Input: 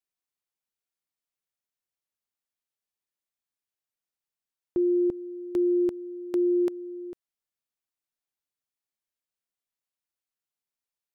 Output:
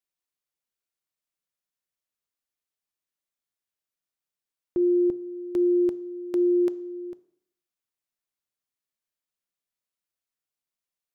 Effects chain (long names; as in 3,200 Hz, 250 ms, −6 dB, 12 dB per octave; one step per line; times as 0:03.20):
notch filter 830 Hz, Q 16
on a send: convolution reverb RT60 0.70 s, pre-delay 3 ms, DRR 16 dB